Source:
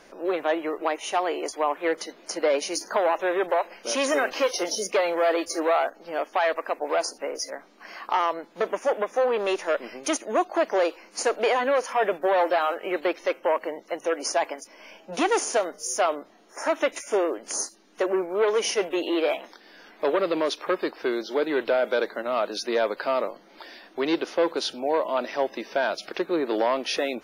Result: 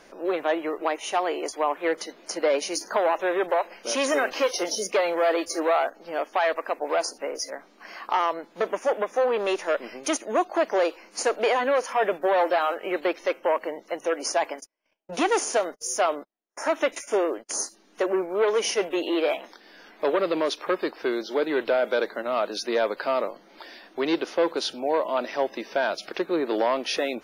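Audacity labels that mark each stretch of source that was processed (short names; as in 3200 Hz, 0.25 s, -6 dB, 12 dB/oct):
14.260000	17.640000	gate -43 dBFS, range -38 dB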